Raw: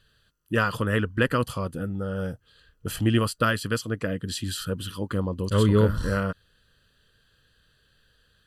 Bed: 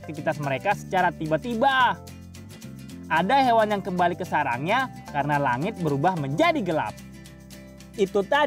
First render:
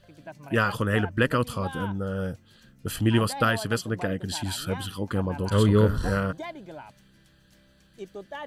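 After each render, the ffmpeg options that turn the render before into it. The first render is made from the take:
-filter_complex "[1:a]volume=-17dB[a];[0:a][a]amix=inputs=2:normalize=0"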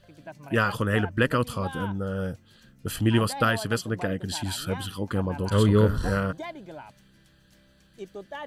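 -af anull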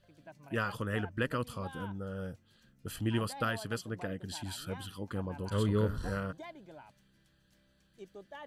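-af "volume=-10dB"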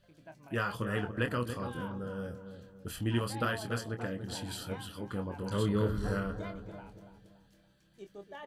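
-filter_complex "[0:a]asplit=2[a][b];[b]adelay=25,volume=-7.5dB[c];[a][c]amix=inputs=2:normalize=0,asplit=2[d][e];[e]adelay=284,lowpass=f=1.2k:p=1,volume=-8.5dB,asplit=2[f][g];[g]adelay=284,lowpass=f=1.2k:p=1,volume=0.46,asplit=2[h][i];[i]adelay=284,lowpass=f=1.2k:p=1,volume=0.46,asplit=2[j][k];[k]adelay=284,lowpass=f=1.2k:p=1,volume=0.46,asplit=2[l][m];[m]adelay=284,lowpass=f=1.2k:p=1,volume=0.46[n];[f][h][j][l][n]amix=inputs=5:normalize=0[o];[d][o]amix=inputs=2:normalize=0"

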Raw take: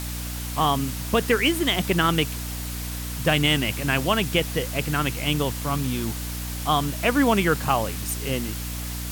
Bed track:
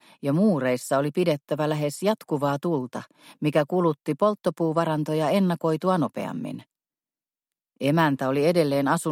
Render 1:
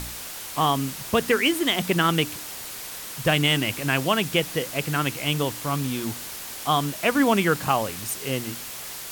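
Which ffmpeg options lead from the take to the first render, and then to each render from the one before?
-af "bandreject=f=60:t=h:w=4,bandreject=f=120:t=h:w=4,bandreject=f=180:t=h:w=4,bandreject=f=240:t=h:w=4,bandreject=f=300:t=h:w=4"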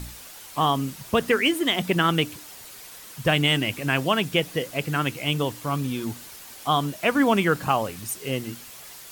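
-af "afftdn=nr=8:nf=-36"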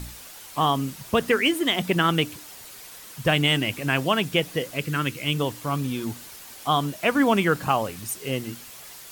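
-filter_complex "[0:a]asettb=1/sr,asplit=3[a][b][c];[a]atrim=end=4.754[d];[b]atrim=start=4.75:end=5.37,asetpts=PTS-STARTPTS,afade=t=in:d=0.004:c=qsin,afade=t=out:st=0.616:d=0.004:c=qsin,equalizer=f=740:t=o:w=0.55:g=-10.5[e];[c]atrim=start=5.366[f];[d][e]acrossfade=d=0.004:c1=hsin:c2=qsin[g];[g][f]acrossfade=d=0.004:c1=qsin:c2=hsin"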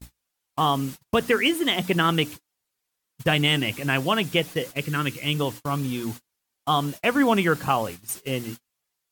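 -af "bandreject=f=620:w=20,agate=range=-38dB:threshold=-34dB:ratio=16:detection=peak"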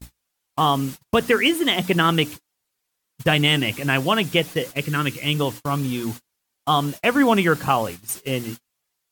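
-af "volume=3dB"

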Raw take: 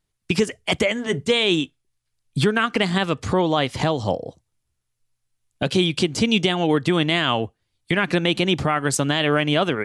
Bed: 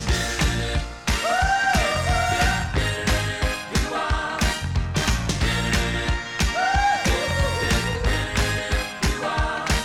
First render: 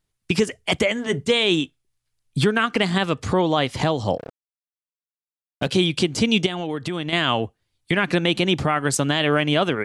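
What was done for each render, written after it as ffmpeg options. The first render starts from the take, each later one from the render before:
-filter_complex "[0:a]asplit=3[a][b][c];[a]afade=t=out:st=4.17:d=0.02[d];[b]aeval=exprs='sgn(val(0))*max(abs(val(0))-0.0188,0)':c=same,afade=t=in:st=4.17:d=0.02,afade=t=out:st=5.67:d=0.02[e];[c]afade=t=in:st=5.67:d=0.02[f];[d][e][f]amix=inputs=3:normalize=0,asettb=1/sr,asplit=3[g][h][i];[g]atrim=end=6.464[j];[h]atrim=start=6.46:end=7.13,asetpts=PTS-STARTPTS,afade=t=in:d=0.004:c=qsin,afade=t=out:st=0.666:d=0.004:c=qsin,acompressor=threshold=-25dB:ratio=3:attack=3.2:release=140:knee=1:detection=peak[k];[i]atrim=start=7.126[l];[j][k]acrossfade=d=0.004:c1=hsin:c2=qsin[m];[m][l]acrossfade=d=0.004:c1=qsin:c2=hsin"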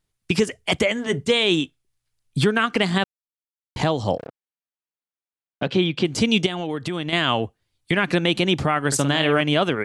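-filter_complex "[0:a]asplit=3[a][b][c];[a]afade=t=out:st=4.26:d=0.02[d];[b]highpass=120,lowpass=3.1k,afade=t=in:st=4.26:d=0.02,afade=t=out:st=6.04:d=0.02[e];[c]afade=t=in:st=6.04:d=0.02[f];[d][e][f]amix=inputs=3:normalize=0,asettb=1/sr,asplit=3[g][h][i];[g]atrim=end=8.874[j];[h]atrim=start=8.87:end=9.41,asetpts=PTS-STARTPTS,afade=t=in:d=0.004:c=qsin,afade=t=out:st=0.536:d=0.004:c=qsin,asplit=2[k][l];[l]adelay=50,volume=-9dB[m];[k][m]amix=inputs=2:normalize=0,atrim=end_sample=23814[n];[i]atrim=start=9.406[o];[j][n]acrossfade=d=0.004:c1=hsin:c2=qsin[p];[p][o]acrossfade=d=0.004:c1=qsin:c2=hsin,asplit=3[q][r][s];[q]atrim=end=3.04,asetpts=PTS-STARTPTS,afade=t=out:st=3.036:d=0.004:c=hsin[t];[r]atrim=start=3.04:end=3.76,asetpts=PTS-STARTPTS,volume=0[u];[s]atrim=start=3.76,asetpts=PTS-STARTPTS,afade=t=in:d=0.004:c=hsin[v];[t][u][v]concat=n=3:v=0:a=1"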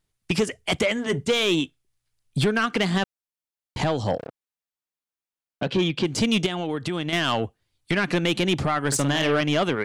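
-af "asoftclip=type=tanh:threshold=-14.5dB"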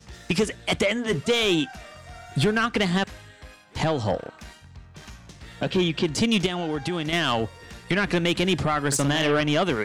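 -filter_complex "[1:a]volume=-21.5dB[a];[0:a][a]amix=inputs=2:normalize=0"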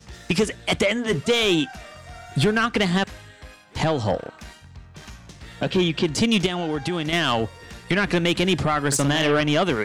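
-af "volume=2dB"

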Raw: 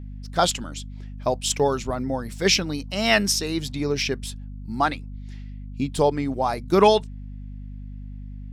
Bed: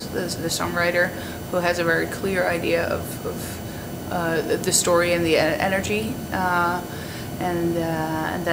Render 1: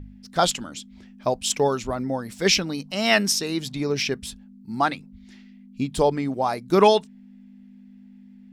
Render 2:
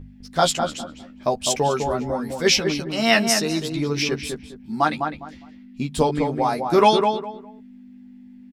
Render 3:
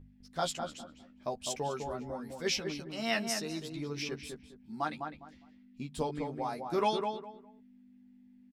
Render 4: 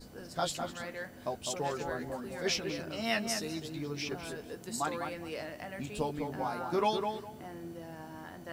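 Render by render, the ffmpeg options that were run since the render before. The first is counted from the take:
-af "bandreject=f=50:t=h:w=4,bandreject=f=100:t=h:w=4,bandreject=f=150:t=h:w=4"
-filter_complex "[0:a]asplit=2[a][b];[b]adelay=13,volume=-4dB[c];[a][c]amix=inputs=2:normalize=0,asplit=2[d][e];[e]adelay=204,lowpass=f=1.6k:p=1,volume=-4.5dB,asplit=2[f][g];[g]adelay=204,lowpass=f=1.6k:p=1,volume=0.25,asplit=2[h][i];[i]adelay=204,lowpass=f=1.6k:p=1,volume=0.25[j];[d][f][h][j]amix=inputs=4:normalize=0"
-af "volume=-14.5dB"
-filter_complex "[1:a]volume=-21.5dB[a];[0:a][a]amix=inputs=2:normalize=0"

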